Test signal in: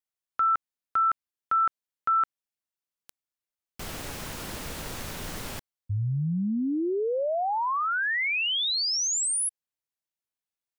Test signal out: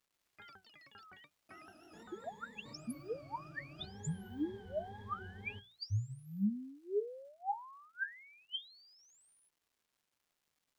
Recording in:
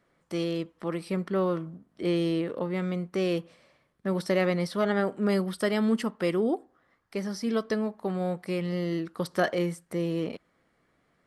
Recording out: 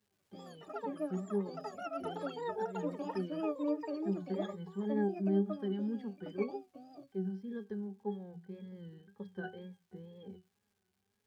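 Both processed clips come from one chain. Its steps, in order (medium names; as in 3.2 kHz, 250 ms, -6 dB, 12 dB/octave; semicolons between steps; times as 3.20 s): hum notches 60/120/180 Hz; pitch-class resonator G, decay 0.17 s; wow and flutter 94 cents; crackle 540 per s -67 dBFS; ever faster or slower copies 121 ms, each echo +7 st, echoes 3; trim -1.5 dB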